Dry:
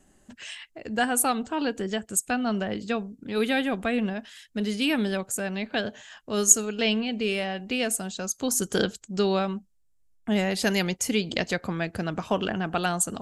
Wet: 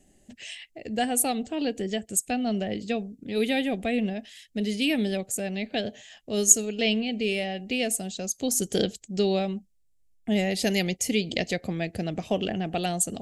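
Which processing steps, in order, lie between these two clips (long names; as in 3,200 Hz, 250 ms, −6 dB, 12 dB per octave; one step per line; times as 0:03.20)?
flat-topped bell 1,200 Hz −14 dB 1 octave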